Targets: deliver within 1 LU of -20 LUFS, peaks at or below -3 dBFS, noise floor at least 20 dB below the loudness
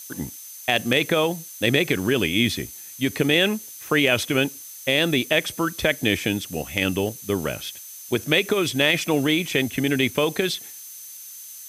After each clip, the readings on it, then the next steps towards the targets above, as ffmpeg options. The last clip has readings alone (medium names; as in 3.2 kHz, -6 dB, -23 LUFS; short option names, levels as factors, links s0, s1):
steady tone 6.2 kHz; tone level -43 dBFS; noise floor -40 dBFS; noise floor target -42 dBFS; loudness -22.0 LUFS; peak level -6.0 dBFS; loudness target -20.0 LUFS
-> -af "bandreject=f=6200:w=30"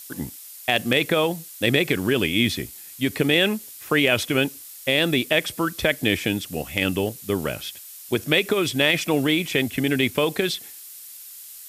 steady tone not found; noise floor -42 dBFS; noise floor target -43 dBFS
-> -af "afftdn=nr=6:nf=-42"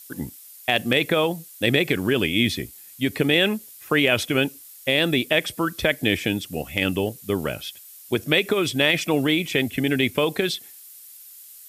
noise floor -45 dBFS; loudness -22.5 LUFS; peak level -6.0 dBFS; loudness target -20.0 LUFS
-> -af "volume=1.33"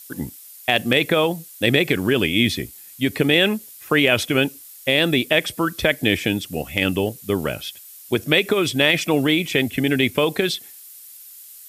loudness -20.0 LUFS; peak level -3.5 dBFS; noise floor -43 dBFS